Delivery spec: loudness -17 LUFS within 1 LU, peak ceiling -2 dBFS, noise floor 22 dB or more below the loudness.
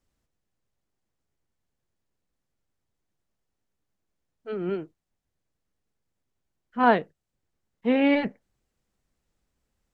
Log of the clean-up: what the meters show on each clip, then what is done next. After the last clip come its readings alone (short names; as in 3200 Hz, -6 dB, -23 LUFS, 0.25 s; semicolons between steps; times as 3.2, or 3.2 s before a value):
loudness -25.0 LUFS; peak -8.0 dBFS; loudness target -17.0 LUFS
-> gain +8 dB; limiter -2 dBFS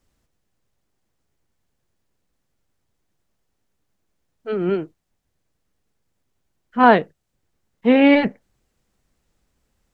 loudness -17.5 LUFS; peak -2.0 dBFS; noise floor -74 dBFS